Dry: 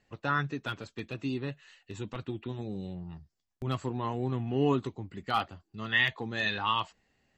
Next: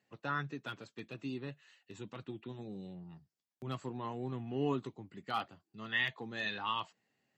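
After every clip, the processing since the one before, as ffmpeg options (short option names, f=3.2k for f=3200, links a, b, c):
-af "highpass=f=120:w=0.5412,highpass=f=120:w=1.3066,volume=-7dB"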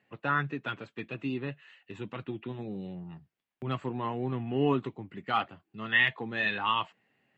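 -af "highshelf=f=3.8k:t=q:w=1.5:g=-11.5,volume=7dB"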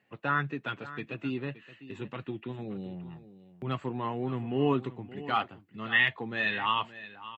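-af "aecho=1:1:572:0.168"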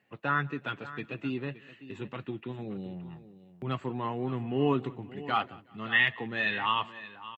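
-af "aecho=1:1:183|366|549:0.0631|0.0259|0.0106"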